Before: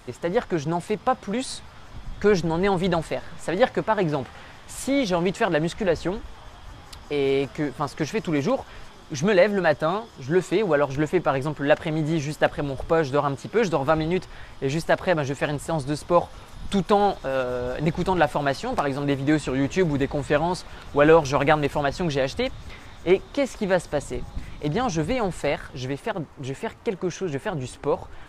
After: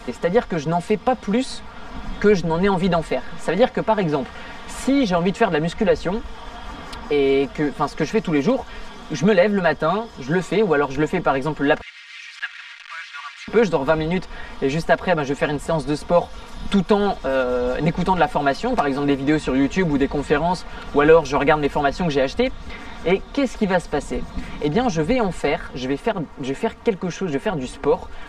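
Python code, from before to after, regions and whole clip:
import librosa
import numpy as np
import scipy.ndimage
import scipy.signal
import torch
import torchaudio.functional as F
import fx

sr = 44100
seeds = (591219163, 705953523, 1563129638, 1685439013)

y = fx.chain(x, sr, fx.delta_mod(bps=64000, step_db=-26.0),
    fx.cheby2_highpass(hz=540.0, order=4, stop_db=60),
    fx.spacing_loss(db_at_10k=25), at=(11.81, 13.48))
y = fx.high_shelf(y, sr, hz=8100.0, db=-11.0)
y = y + 0.83 * np.pad(y, (int(4.3 * sr / 1000.0), 0))[:len(y)]
y = fx.band_squash(y, sr, depth_pct=40)
y = y * 10.0 ** (2.0 / 20.0)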